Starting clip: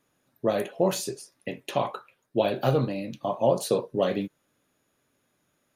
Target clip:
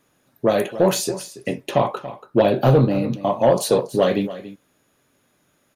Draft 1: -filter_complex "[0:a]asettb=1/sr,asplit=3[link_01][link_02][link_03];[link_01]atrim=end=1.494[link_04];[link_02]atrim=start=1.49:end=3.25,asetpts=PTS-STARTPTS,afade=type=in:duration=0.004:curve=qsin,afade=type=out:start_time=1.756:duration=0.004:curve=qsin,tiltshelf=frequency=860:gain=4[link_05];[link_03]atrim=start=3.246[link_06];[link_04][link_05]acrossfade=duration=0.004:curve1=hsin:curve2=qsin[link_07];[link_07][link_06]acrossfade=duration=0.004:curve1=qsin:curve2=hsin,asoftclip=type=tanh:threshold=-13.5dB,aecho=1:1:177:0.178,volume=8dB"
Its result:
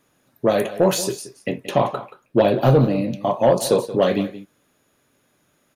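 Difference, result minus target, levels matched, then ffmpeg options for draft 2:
echo 106 ms early
-filter_complex "[0:a]asettb=1/sr,asplit=3[link_01][link_02][link_03];[link_01]atrim=end=1.494[link_04];[link_02]atrim=start=1.49:end=3.25,asetpts=PTS-STARTPTS,afade=type=in:duration=0.004:curve=qsin,afade=type=out:start_time=1.756:duration=0.004:curve=qsin,tiltshelf=frequency=860:gain=4[link_05];[link_03]atrim=start=3.246[link_06];[link_04][link_05]acrossfade=duration=0.004:curve1=hsin:curve2=qsin[link_07];[link_07][link_06]acrossfade=duration=0.004:curve1=qsin:curve2=hsin,asoftclip=type=tanh:threshold=-13.5dB,aecho=1:1:283:0.178,volume=8dB"

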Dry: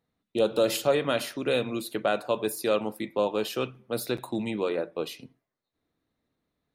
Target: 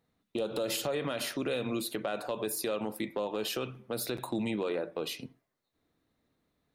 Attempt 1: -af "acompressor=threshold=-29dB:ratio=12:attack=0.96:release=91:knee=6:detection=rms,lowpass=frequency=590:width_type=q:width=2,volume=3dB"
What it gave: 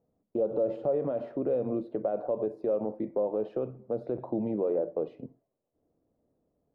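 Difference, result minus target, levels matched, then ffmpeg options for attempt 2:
500 Hz band +2.5 dB
-af "acompressor=threshold=-29dB:ratio=12:attack=0.96:release=91:knee=6:detection=rms,volume=3dB"

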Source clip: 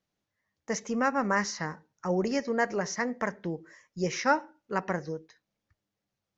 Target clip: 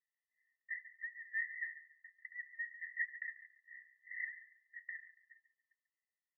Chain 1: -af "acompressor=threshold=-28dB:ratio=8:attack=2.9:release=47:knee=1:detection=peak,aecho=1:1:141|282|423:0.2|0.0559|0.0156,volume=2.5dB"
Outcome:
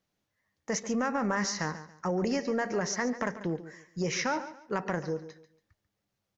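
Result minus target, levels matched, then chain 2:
2,000 Hz band −7.5 dB
-af "acompressor=threshold=-28dB:ratio=8:attack=2.9:release=47:knee=1:detection=peak,asuperpass=centerf=1900:order=20:qfactor=6.6,aecho=1:1:141|282|423:0.2|0.0559|0.0156,volume=2.5dB"

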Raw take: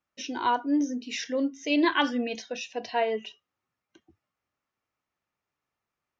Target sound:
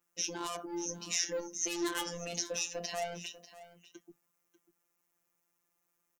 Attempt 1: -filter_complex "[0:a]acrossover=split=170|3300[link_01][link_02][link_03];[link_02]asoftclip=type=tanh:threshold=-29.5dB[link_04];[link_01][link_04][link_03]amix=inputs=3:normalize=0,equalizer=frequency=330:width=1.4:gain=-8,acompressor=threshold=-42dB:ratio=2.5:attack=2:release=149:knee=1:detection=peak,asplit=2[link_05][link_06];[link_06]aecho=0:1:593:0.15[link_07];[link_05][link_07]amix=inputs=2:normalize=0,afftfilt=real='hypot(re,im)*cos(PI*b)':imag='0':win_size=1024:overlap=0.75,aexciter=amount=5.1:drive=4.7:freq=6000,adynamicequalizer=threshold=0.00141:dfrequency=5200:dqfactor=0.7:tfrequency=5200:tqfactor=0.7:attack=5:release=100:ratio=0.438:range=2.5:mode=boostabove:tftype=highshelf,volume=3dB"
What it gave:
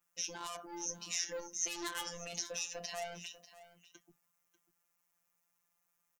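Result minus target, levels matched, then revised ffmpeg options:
250 Hz band −6.5 dB; downward compressor: peak gain reduction +3 dB
-filter_complex "[0:a]acrossover=split=170|3300[link_01][link_02][link_03];[link_02]asoftclip=type=tanh:threshold=-29.5dB[link_04];[link_01][link_04][link_03]amix=inputs=3:normalize=0,equalizer=frequency=330:width=1.4:gain=4,acompressor=threshold=-35dB:ratio=2.5:attack=2:release=149:knee=1:detection=peak,asplit=2[link_05][link_06];[link_06]aecho=0:1:593:0.15[link_07];[link_05][link_07]amix=inputs=2:normalize=0,afftfilt=real='hypot(re,im)*cos(PI*b)':imag='0':win_size=1024:overlap=0.75,aexciter=amount=5.1:drive=4.7:freq=6000,adynamicequalizer=threshold=0.00141:dfrequency=5200:dqfactor=0.7:tfrequency=5200:tqfactor=0.7:attack=5:release=100:ratio=0.438:range=2.5:mode=boostabove:tftype=highshelf,volume=3dB"

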